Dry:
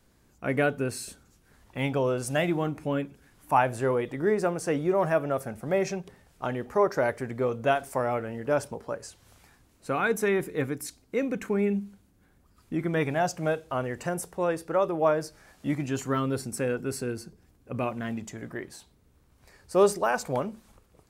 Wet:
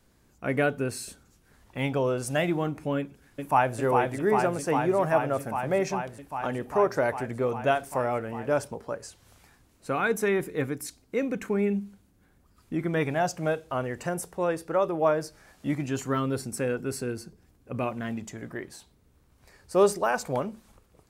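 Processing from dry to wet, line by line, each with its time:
0:02.98–0:03.78: delay throw 400 ms, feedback 85%, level −3.5 dB

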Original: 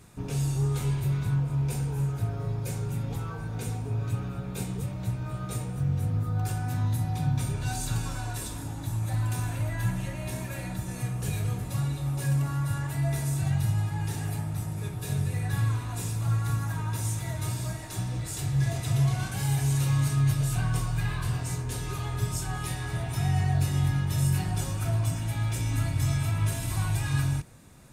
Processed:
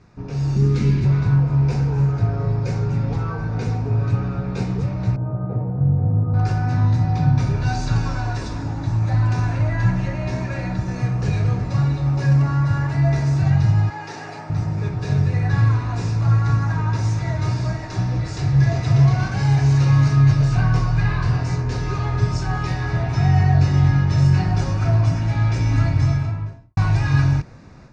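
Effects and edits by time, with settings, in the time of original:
0:00.56–0:01.05: drawn EQ curve 140 Hz 0 dB, 200 Hz +14 dB, 770 Hz −11 dB, 2,200 Hz +2 dB
0:05.16–0:06.34: Chebyshev band-pass filter 100–760 Hz
0:13.90–0:14.50: high-pass filter 410 Hz
0:25.84–0:26.77: fade out and dull
whole clip: automatic gain control gain up to 8 dB; Butterworth low-pass 5,500 Hz 36 dB per octave; parametric band 3,300 Hz −11.5 dB 0.55 octaves; level +2 dB

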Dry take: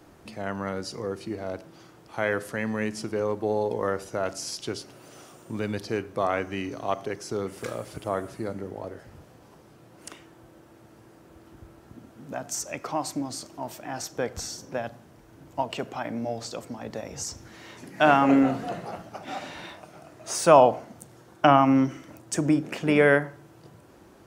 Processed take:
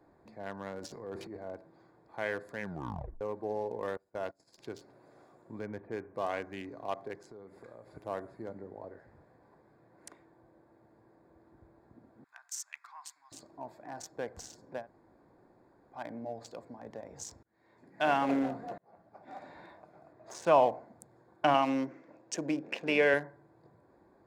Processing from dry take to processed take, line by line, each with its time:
0:00.79–0:01.37: transient designer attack −6 dB, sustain +10 dB
0:02.60: tape stop 0.61 s
0:03.97–0:04.58: noise gate −34 dBFS, range −22 dB
0:05.59–0:06.15: Butterworth low-pass 2,500 Hz
0:07.28–0:07.96: downward compressor 3 to 1, threshold −39 dBFS
0:08.91–0:10.09: parametric band 1,800 Hz +4 dB 0.92 octaves
0:12.24–0:13.32: inverse Chebyshev high-pass filter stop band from 580 Hz
0:14.83–0:15.95: fill with room tone, crossfade 0.10 s
0:17.43–0:18.17: fade in
0:18.78–0:19.53: fade in
0:20.12–0:20.66: high-frequency loss of the air 69 metres
0:21.54–0:23.14: loudspeaker in its box 170–7,200 Hz, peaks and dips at 510 Hz +5 dB, 2,700 Hz +10 dB, 5,800 Hz +6 dB
whole clip: adaptive Wiener filter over 15 samples; low-shelf EQ 340 Hz −8 dB; notch filter 1,300 Hz, Q 6.4; level −6 dB

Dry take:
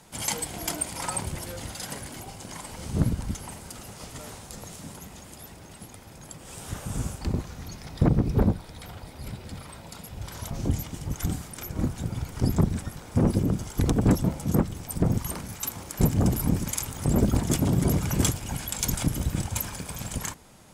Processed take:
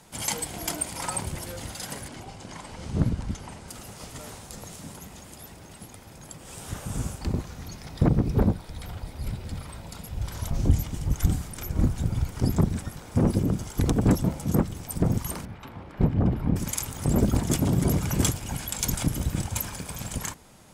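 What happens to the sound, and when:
0:02.08–0:03.68: high-frequency loss of the air 63 metres
0:08.69–0:12.30: low-shelf EQ 89 Hz +11.5 dB
0:15.45–0:16.56: high-frequency loss of the air 420 metres

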